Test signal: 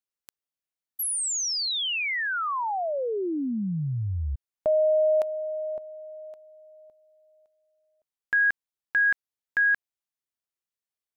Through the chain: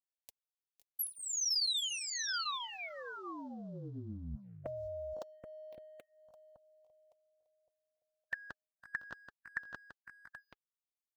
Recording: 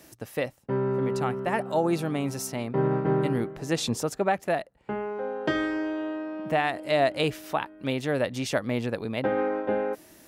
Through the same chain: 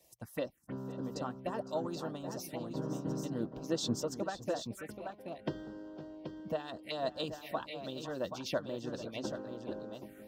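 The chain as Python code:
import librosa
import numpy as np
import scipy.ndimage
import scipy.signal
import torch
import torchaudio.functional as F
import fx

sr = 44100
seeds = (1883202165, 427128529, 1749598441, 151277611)

p1 = fx.dynamic_eq(x, sr, hz=720.0, q=4.1, threshold_db=-39.0, ratio=4.0, max_db=-6)
p2 = fx.echo_multitap(p1, sr, ms=(508, 527, 780), db=(-14.0, -16.5, -7.5))
p3 = np.sign(p2) * np.maximum(np.abs(p2) - 10.0 ** (-46.5 / 20.0), 0.0)
p4 = p2 + F.gain(torch.from_numpy(p3), -7.5).numpy()
p5 = fx.env_phaser(p4, sr, low_hz=230.0, high_hz=2200.0, full_db=-22.5)
p6 = fx.notch_comb(p5, sr, f0_hz=420.0)
p7 = fx.hpss(p6, sr, part='harmonic', gain_db=-15)
y = F.gain(torch.from_numpy(p7), -5.5).numpy()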